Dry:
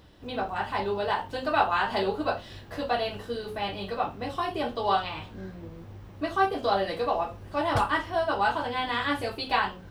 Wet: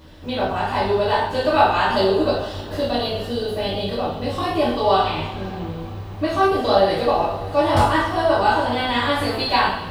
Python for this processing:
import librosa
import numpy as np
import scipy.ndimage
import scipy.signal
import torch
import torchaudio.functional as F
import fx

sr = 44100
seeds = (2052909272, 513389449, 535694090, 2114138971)

y = fx.dynamic_eq(x, sr, hz=1700.0, q=0.82, threshold_db=-37.0, ratio=4.0, max_db=-5)
y = fx.spec_box(y, sr, start_s=1.92, length_s=2.41, low_hz=660.0, high_hz=2700.0, gain_db=-6)
y = fx.rev_double_slope(y, sr, seeds[0], early_s=0.58, late_s=4.6, knee_db=-20, drr_db=-5.5)
y = F.gain(torch.from_numpy(y), 4.0).numpy()